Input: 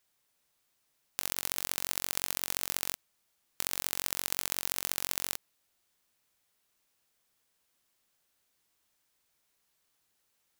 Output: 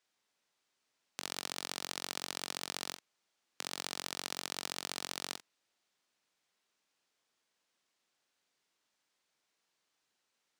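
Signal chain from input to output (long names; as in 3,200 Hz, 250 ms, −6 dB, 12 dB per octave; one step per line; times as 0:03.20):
three-way crossover with the lows and the highs turned down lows −15 dB, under 160 Hz, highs −18 dB, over 7,700 Hz
on a send: convolution reverb, pre-delay 44 ms, DRR 10 dB
on the sum: level −2 dB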